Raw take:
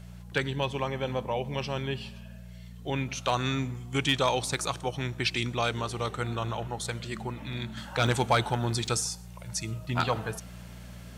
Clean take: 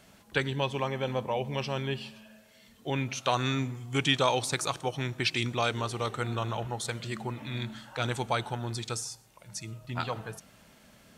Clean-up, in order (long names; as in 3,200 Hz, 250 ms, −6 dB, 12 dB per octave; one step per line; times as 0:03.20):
clipped peaks rebuilt −15 dBFS
hum removal 59.4 Hz, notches 3
repair the gap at 0:06.17/0:07.53/0:08.07/0:08.87, 1.7 ms
level 0 dB, from 0:07.77 −6 dB